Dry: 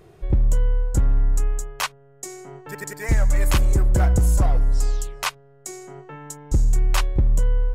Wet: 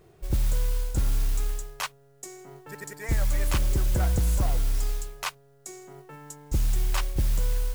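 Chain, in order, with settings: modulation noise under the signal 19 dB; gain -6.5 dB

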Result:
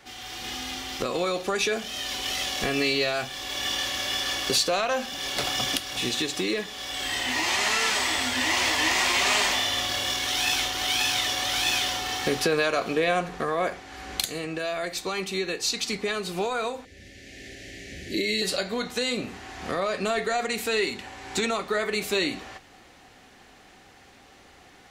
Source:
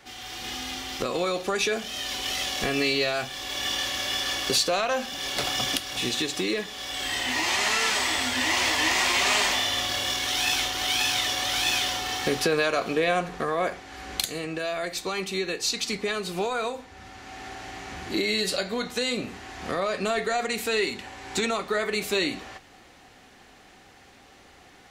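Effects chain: 16.85–18.42 elliptic band-stop 590–1800 Hz, stop band 60 dB

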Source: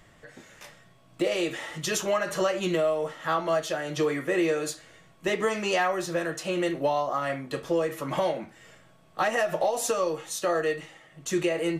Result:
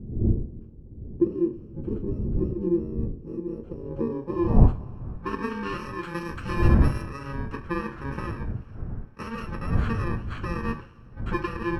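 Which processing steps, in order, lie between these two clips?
FFT order left unsorted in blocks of 64 samples; wind noise 110 Hz -29 dBFS; 6.03–7.02 high shelf 5000 Hz +11.5 dB; on a send at -10 dB: reverb, pre-delay 3 ms; on the sum: low-pass sweep 360 Hz -> 1500 Hz, 3.38–5.44; gain +1 dB

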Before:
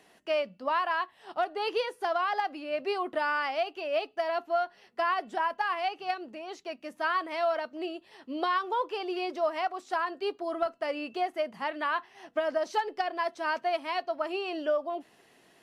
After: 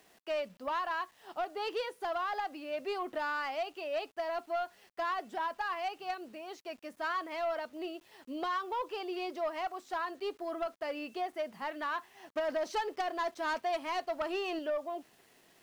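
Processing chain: 12.34–14.59 sample leveller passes 1; bit-crush 10-bit; soft clip -23 dBFS, distortion -17 dB; gain -4 dB

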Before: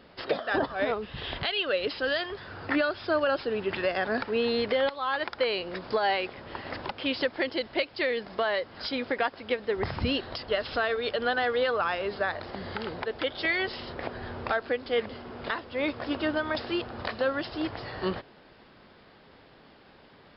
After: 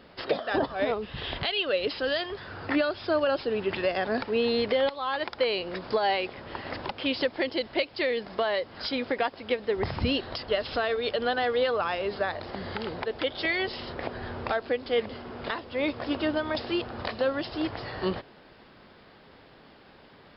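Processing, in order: dynamic EQ 1500 Hz, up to -5 dB, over -41 dBFS, Q 1.7; gain +1.5 dB

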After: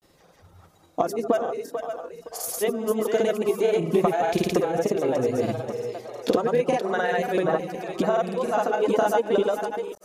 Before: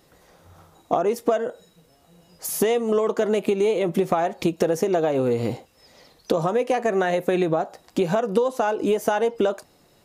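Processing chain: reverse delay 0.14 s, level -9.5 dB; reverb removal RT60 1.1 s; split-band echo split 390 Hz, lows 0.142 s, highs 0.494 s, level -7.5 dB; grains, pitch spread up and down by 0 st

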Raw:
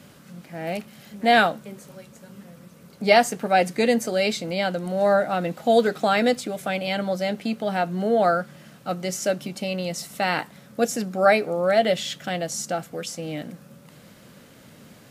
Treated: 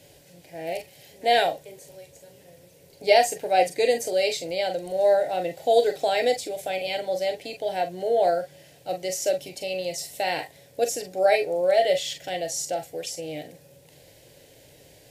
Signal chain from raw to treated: fixed phaser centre 510 Hz, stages 4; on a send: reverb, pre-delay 25 ms, DRR 5.5 dB

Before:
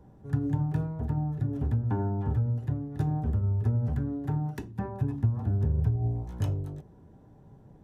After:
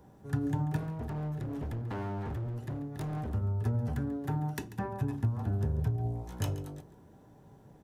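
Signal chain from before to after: tilt +2 dB/oct; 0.77–3.34 hard clip -35.5 dBFS, distortion -11 dB; echo 0.139 s -15.5 dB; gain +2 dB

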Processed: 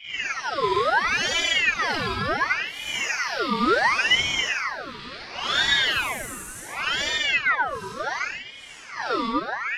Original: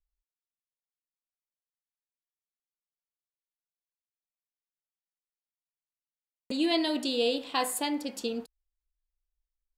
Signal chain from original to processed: overdrive pedal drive 16 dB, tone 1400 Hz, clips at -14 dBFS; low-pass opened by the level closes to 780 Hz, open at -25 dBFS; Paulstretch 5.1×, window 0.10 s, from 6.47; ring modulator with a swept carrier 1700 Hz, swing 60%, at 0.7 Hz; gain +5 dB

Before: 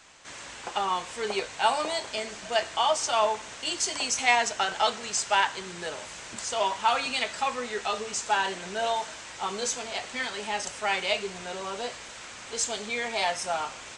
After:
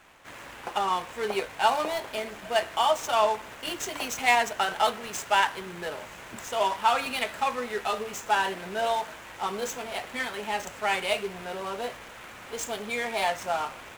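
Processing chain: median filter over 9 samples; gain +1.5 dB

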